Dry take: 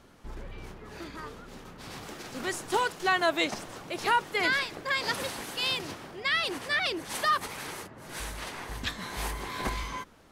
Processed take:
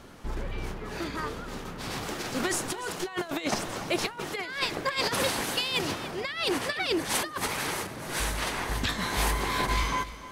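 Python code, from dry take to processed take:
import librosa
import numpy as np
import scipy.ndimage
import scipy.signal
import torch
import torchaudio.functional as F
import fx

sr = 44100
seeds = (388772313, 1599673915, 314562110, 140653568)

p1 = fx.over_compress(x, sr, threshold_db=-32.0, ratio=-0.5)
p2 = p1 + fx.echo_single(p1, sr, ms=293, db=-15.0, dry=0)
y = F.gain(torch.from_numpy(p2), 4.5).numpy()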